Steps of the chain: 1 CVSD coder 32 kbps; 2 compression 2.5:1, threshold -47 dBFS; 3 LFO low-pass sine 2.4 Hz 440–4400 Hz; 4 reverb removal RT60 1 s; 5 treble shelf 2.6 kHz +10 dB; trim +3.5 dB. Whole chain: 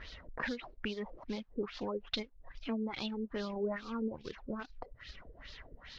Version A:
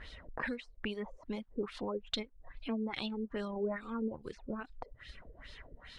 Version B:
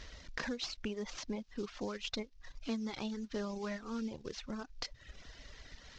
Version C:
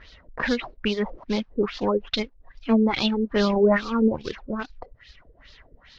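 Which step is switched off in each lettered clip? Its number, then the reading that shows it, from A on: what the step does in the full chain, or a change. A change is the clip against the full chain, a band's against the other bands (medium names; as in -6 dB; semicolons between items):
1, momentary loudness spread change +1 LU; 3, loudness change -1.5 LU; 2, mean gain reduction 10.0 dB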